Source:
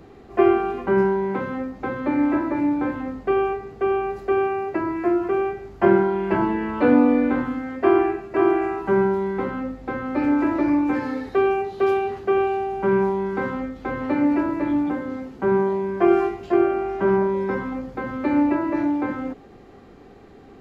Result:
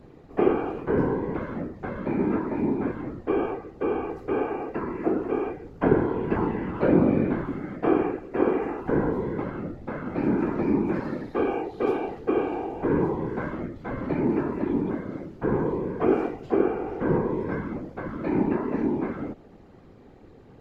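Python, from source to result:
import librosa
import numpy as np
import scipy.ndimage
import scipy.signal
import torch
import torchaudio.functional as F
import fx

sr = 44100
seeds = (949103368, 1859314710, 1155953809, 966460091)

y = fx.low_shelf(x, sr, hz=240.0, db=8.5)
y = fx.whisperise(y, sr, seeds[0])
y = F.gain(torch.from_numpy(y), -7.5).numpy()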